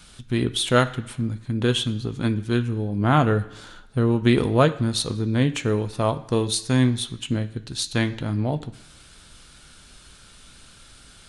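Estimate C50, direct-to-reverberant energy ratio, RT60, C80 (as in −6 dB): 15.5 dB, 8.0 dB, 1.0 s, 18.0 dB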